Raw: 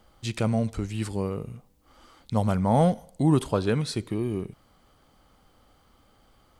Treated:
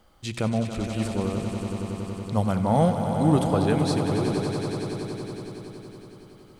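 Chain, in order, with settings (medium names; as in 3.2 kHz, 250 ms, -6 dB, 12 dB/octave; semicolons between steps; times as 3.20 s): hum notches 60/120 Hz; echo with a slow build-up 93 ms, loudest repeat 5, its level -10 dB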